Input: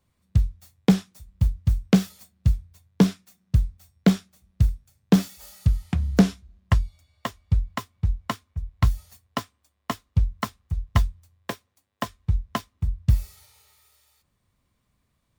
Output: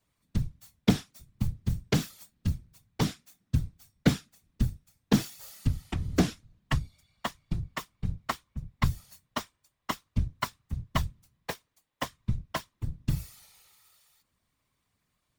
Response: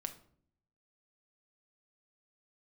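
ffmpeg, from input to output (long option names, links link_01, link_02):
-af "tiltshelf=frequency=640:gain=-3.5,afftfilt=real='hypot(re,im)*cos(2*PI*random(0))':imag='hypot(re,im)*sin(2*PI*random(1))':win_size=512:overlap=0.75,volume=1.5dB"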